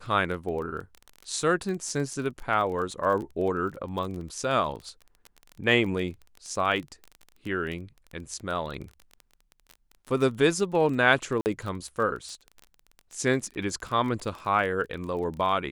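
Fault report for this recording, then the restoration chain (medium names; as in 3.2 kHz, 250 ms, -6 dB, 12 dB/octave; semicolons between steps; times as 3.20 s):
crackle 24 per s -33 dBFS
11.41–11.46 s: dropout 49 ms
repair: de-click; interpolate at 11.41 s, 49 ms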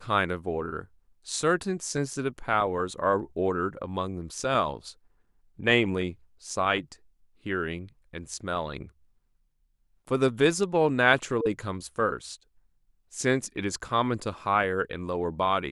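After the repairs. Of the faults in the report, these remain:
nothing left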